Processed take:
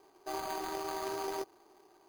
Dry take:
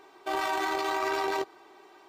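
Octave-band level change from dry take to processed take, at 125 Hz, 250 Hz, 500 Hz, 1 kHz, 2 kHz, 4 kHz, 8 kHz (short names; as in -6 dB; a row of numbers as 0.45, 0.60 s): n/a, -6.5 dB, -6.5 dB, -9.0 dB, -14.5 dB, -9.0 dB, -2.0 dB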